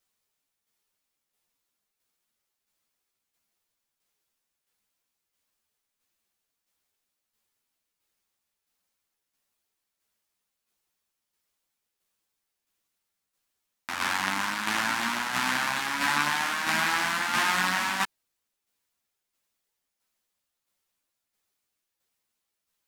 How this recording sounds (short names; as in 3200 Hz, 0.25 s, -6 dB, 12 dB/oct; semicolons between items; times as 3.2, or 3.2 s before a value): tremolo saw down 1.5 Hz, depth 50%; a shimmering, thickened sound